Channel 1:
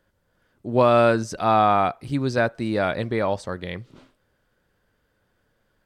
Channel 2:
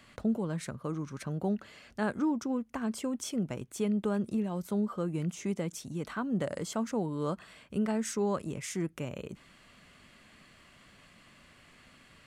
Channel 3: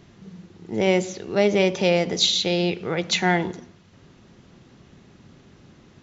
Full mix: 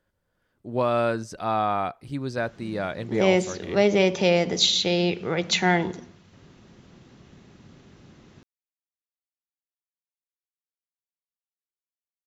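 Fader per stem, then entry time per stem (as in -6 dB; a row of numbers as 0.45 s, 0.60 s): -6.5 dB, mute, -0.5 dB; 0.00 s, mute, 2.40 s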